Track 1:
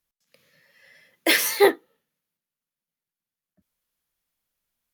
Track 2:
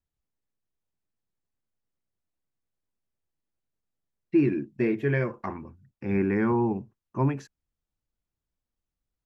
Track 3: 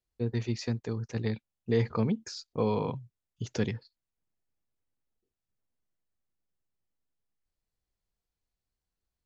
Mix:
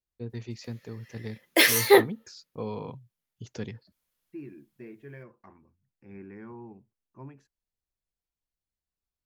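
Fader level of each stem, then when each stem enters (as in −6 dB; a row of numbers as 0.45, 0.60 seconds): 0.0, −20.0, −6.5 decibels; 0.30, 0.00, 0.00 seconds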